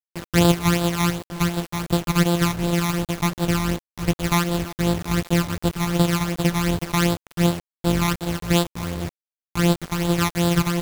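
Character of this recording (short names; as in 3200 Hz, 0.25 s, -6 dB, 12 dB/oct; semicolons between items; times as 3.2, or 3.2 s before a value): a buzz of ramps at a fixed pitch in blocks of 256 samples; phasing stages 12, 2.7 Hz, lowest notch 490–2100 Hz; a quantiser's noise floor 6-bit, dither none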